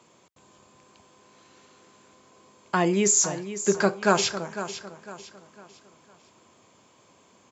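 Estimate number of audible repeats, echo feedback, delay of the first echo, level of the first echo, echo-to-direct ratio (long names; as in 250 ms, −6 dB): 3, 37%, 503 ms, −12.0 dB, −11.5 dB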